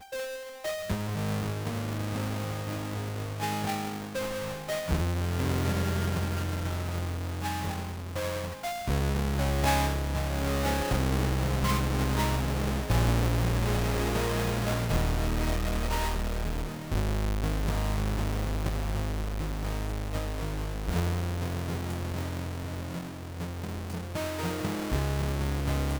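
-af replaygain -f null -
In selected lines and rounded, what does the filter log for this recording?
track_gain = +14.1 dB
track_peak = 0.087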